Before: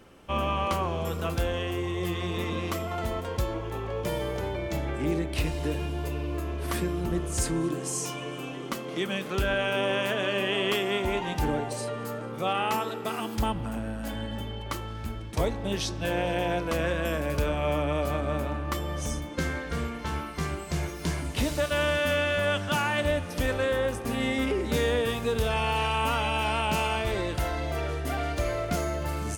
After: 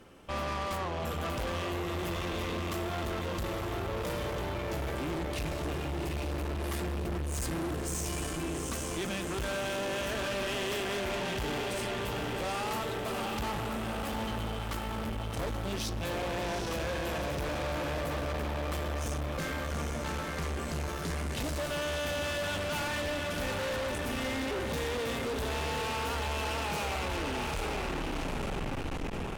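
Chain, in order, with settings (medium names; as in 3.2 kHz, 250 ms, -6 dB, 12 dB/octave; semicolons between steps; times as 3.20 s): tape stop on the ending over 2.77 s; echo that smears into a reverb 808 ms, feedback 56%, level -4.5 dB; valve stage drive 34 dB, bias 0.7; trim +2.5 dB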